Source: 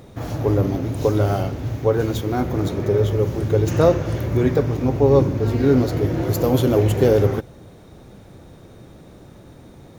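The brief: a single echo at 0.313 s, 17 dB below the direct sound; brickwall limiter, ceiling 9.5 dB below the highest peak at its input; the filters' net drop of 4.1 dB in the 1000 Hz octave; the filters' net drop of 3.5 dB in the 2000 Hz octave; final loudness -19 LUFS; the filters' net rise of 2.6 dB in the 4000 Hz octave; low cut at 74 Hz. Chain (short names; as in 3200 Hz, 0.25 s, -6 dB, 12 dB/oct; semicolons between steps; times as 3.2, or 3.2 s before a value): HPF 74 Hz; bell 1000 Hz -5.5 dB; bell 2000 Hz -3.5 dB; bell 4000 Hz +4.5 dB; limiter -14 dBFS; echo 0.313 s -17 dB; gain +4.5 dB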